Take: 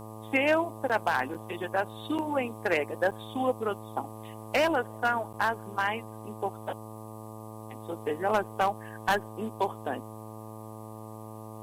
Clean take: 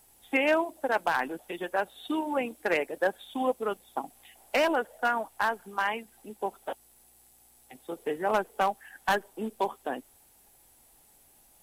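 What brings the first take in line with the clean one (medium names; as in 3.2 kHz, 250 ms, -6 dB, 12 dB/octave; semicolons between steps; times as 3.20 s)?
de-hum 109.3 Hz, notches 11; interpolate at 0.89/1.34/2.18/3.11/5.33 s, 7.1 ms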